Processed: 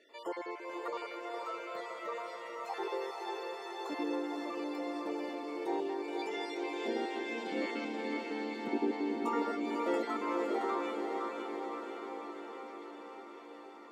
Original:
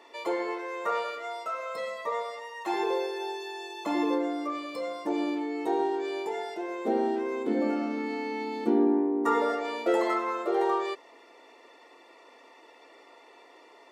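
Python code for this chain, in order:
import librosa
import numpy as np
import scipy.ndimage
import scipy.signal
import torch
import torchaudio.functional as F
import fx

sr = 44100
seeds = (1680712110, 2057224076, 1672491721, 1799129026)

y = fx.spec_dropout(x, sr, seeds[0], share_pct=27)
y = fx.weighting(y, sr, curve='D', at=(6.19, 7.85))
y = fx.echo_diffused(y, sr, ms=513, feedback_pct=71, wet_db=-3.5)
y = F.gain(torch.from_numpy(y), -8.0).numpy()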